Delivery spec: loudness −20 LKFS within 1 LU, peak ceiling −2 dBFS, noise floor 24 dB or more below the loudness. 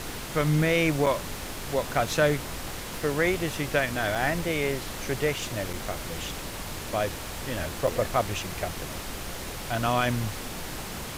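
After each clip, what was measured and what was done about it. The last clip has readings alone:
number of dropouts 4; longest dropout 5.5 ms; background noise floor −37 dBFS; target noise floor −53 dBFS; integrated loudness −28.5 LKFS; sample peak −10.5 dBFS; target loudness −20.0 LKFS
→ repair the gap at 0:01.06/0:04.15/0:05.73/0:07.87, 5.5 ms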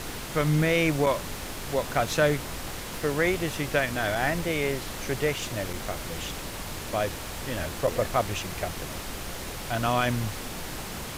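number of dropouts 0; background noise floor −37 dBFS; target noise floor −53 dBFS
→ noise reduction from a noise print 16 dB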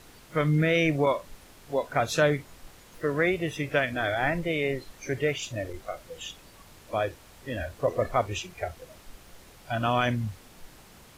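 background noise floor −53 dBFS; integrated loudness −28.0 LKFS; sample peak −11.5 dBFS; target loudness −20.0 LKFS
→ level +8 dB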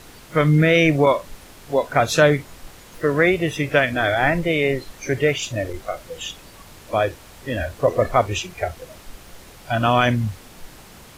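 integrated loudness −20.0 LKFS; sample peak −3.5 dBFS; background noise floor −45 dBFS

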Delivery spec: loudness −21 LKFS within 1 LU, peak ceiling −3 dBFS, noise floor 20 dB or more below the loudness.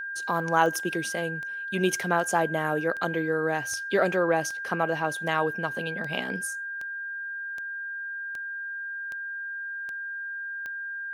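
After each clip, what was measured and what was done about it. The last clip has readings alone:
number of clicks 14; interfering tone 1,600 Hz; level of the tone −32 dBFS; integrated loudness −28.5 LKFS; sample peak −6.5 dBFS; target loudness −21.0 LKFS
→ click removal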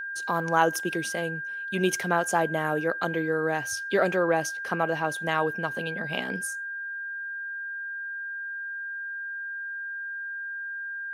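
number of clicks 0; interfering tone 1,600 Hz; level of the tone −32 dBFS
→ notch filter 1,600 Hz, Q 30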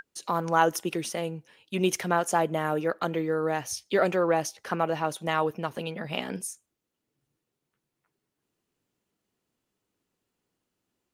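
interfering tone none found; integrated loudness −28.0 LKFS; sample peak −6.5 dBFS; target loudness −21.0 LKFS
→ level +7 dB
brickwall limiter −3 dBFS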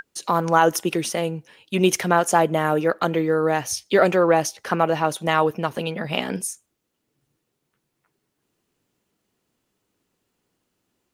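integrated loudness −21.5 LKFS; sample peak −3.0 dBFS; background noise floor −77 dBFS

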